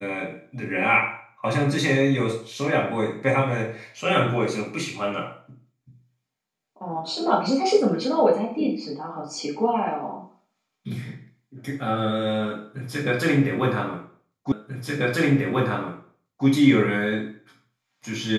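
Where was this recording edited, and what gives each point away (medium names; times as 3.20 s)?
14.52 s: repeat of the last 1.94 s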